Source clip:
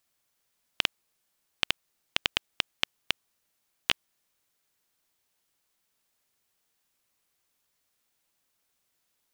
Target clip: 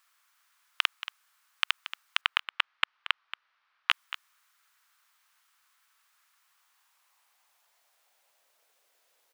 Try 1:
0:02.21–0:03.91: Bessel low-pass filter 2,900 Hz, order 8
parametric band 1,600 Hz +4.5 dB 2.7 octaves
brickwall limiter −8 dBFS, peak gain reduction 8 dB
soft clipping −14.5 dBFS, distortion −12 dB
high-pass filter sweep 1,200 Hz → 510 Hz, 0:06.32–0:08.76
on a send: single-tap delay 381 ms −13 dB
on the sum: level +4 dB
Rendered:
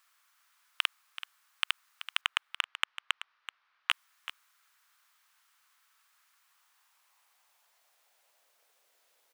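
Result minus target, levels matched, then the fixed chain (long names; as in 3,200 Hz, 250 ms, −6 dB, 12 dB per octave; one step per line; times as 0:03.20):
echo 152 ms late; soft clipping: distortion +13 dB
0:02.21–0:03.91: Bessel low-pass filter 2,900 Hz, order 8
parametric band 1,600 Hz +4.5 dB 2.7 octaves
brickwall limiter −8 dBFS, peak gain reduction 8 dB
soft clipping −6 dBFS, distortion −25 dB
high-pass filter sweep 1,200 Hz → 510 Hz, 0:06.32–0:08.76
on a send: single-tap delay 229 ms −13 dB
on the sum: level +4 dB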